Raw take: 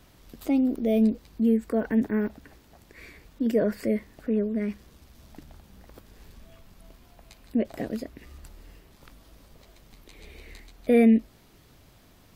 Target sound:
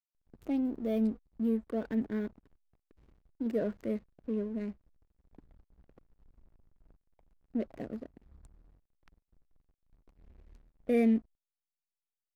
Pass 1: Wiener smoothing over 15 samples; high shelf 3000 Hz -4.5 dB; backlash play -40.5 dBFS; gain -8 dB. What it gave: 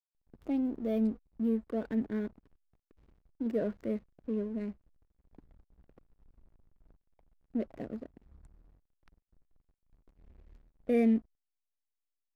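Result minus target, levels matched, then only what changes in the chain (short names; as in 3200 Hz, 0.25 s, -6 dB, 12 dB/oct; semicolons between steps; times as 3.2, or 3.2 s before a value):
8000 Hz band -3.0 dB
remove: high shelf 3000 Hz -4.5 dB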